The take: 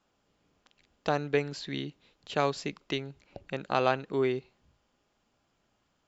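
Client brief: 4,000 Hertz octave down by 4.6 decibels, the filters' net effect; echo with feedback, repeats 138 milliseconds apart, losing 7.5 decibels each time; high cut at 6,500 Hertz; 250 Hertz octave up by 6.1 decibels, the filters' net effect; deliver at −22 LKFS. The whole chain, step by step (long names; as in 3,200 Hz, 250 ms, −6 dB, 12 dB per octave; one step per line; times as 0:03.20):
low-pass filter 6,500 Hz
parametric band 250 Hz +7.5 dB
parametric band 4,000 Hz −5.5 dB
repeating echo 138 ms, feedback 42%, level −7.5 dB
level +7 dB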